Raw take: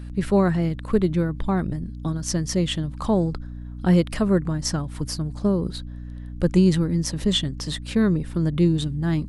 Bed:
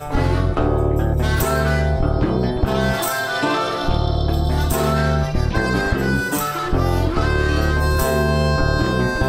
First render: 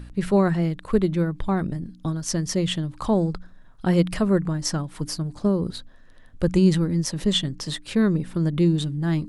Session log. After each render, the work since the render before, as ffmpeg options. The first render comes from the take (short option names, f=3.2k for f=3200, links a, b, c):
-af "bandreject=f=60:t=h:w=4,bandreject=f=120:t=h:w=4,bandreject=f=180:t=h:w=4,bandreject=f=240:t=h:w=4,bandreject=f=300:t=h:w=4"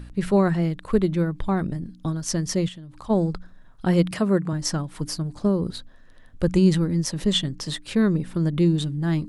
-filter_complex "[0:a]asplit=3[a][b][c];[a]afade=t=out:st=2.67:d=0.02[d];[b]acompressor=threshold=-39dB:ratio=4:attack=3.2:release=140:knee=1:detection=peak,afade=t=in:st=2.67:d=0.02,afade=t=out:st=3.09:d=0.02[e];[c]afade=t=in:st=3.09:d=0.02[f];[d][e][f]amix=inputs=3:normalize=0,asettb=1/sr,asplit=3[g][h][i];[g]atrim=end=4.114[j];[h]atrim=start=4.11:end=4.53,asetpts=PTS-STARTPTS,afade=t=in:d=0.004:c=qsin,afade=t=out:st=0.416:d=0.004:c=qsin,highpass=130[k];[i]atrim=start=4.526[l];[j][k]acrossfade=d=0.004:c1=hsin:c2=qsin[m];[m][l]acrossfade=d=0.004:c1=qsin:c2=hsin"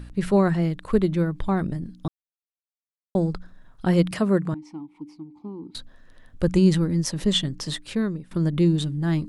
-filter_complex "[0:a]asettb=1/sr,asplit=3[a][b][c];[a]atrim=end=4.544[d];[b]atrim=start=4.54:end=5.75,asetpts=PTS-STARTPTS,afade=t=in:d=0.004:c=qsin,afade=t=out:st=1.206:d=0.004:c=qsin,asplit=3[e][f][g];[e]bandpass=f=300:t=q:w=8,volume=0dB[h];[f]bandpass=f=870:t=q:w=8,volume=-6dB[i];[g]bandpass=f=2.24k:t=q:w=8,volume=-9dB[j];[h][i][j]amix=inputs=3:normalize=0[k];[c]atrim=start=5.746[l];[d][k]acrossfade=d=0.004:c1=hsin:c2=qsin[m];[m][l]acrossfade=d=0.004:c1=qsin:c2=hsin,asplit=4[n][o][p][q];[n]atrim=end=2.08,asetpts=PTS-STARTPTS,afade=t=out:st=2.076:d=0.004:c=hsin[r];[o]atrim=start=2.08:end=3.15,asetpts=PTS-STARTPTS,volume=0[s];[p]atrim=start=3.15:end=8.31,asetpts=PTS-STARTPTS,afade=t=in:d=0.004:c=hsin,afade=t=out:st=4.6:d=0.56:silence=0.11885[t];[q]atrim=start=8.31,asetpts=PTS-STARTPTS,afade=t=in:d=0.004:c=hsin:silence=0.11885[u];[r][s][t][u]concat=n=4:v=0:a=1"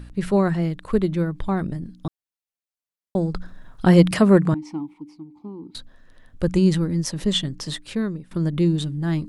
-filter_complex "[0:a]asplit=3[a][b][c];[a]afade=t=out:st=3.34:d=0.02[d];[b]acontrast=88,afade=t=in:st=3.34:d=0.02,afade=t=out:st=4.93:d=0.02[e];[c]afade=t=in:st=4.93:d=0.02[f];[d][e][f]amix=inputs=3:normalize=0"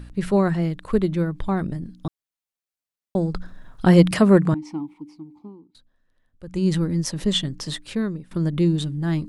-filter_complex "[0:a]asplit=3[a][b][c];[a]atrim=end=5.66,asetpts=PTS-STARTPTS,afade=t=out:st=5.34:d=0.32:silence=0.133352[d];[b]atrim=start=5.66:end=6.46,asetpts=PTS-STARTPTS,volume=-17.5dB[e];[c]atrim=start=6.46,asetpts=PTS-STARTPTS,afade=t=in:d=0.32:silence=0.133352[f];[d][e][f]concat=n=3:v=0:a=1"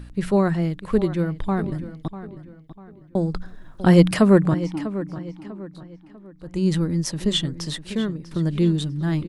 -filter_complex "[0:a]asplit=2[a][b];[b]adelay=646,lowpass=f=4.4k:p=1,volume=-13.5dB,asplit=2[c][d];[d]adelay=646,lowpass=f=4.4k:p=1,volume=0.38,asplit=2[e][f];[f]adelay=646,lowpass=f=4.4k:p=1,volume=0.38,asplit=2[g][h];[h]adelay=646,lowpass=f=4.4k:p=1,volume=0.38[i];[a][c][e][g][i]amix=inputs=5:normalize=0"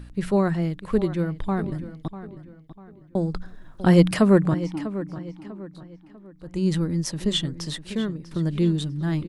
-af "volume=-2dB"